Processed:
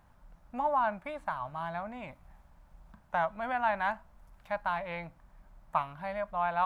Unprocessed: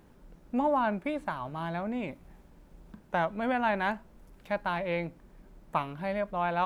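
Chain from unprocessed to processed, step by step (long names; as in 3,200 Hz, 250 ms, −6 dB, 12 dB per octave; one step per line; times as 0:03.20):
drawn EQ curve 100 Hz 0 dB, 420 Hz −17 dB, 640 Hz 0 dB, 1,100 Hz +3 dB, 2,700 Hz −4 dB
level −1.5 dB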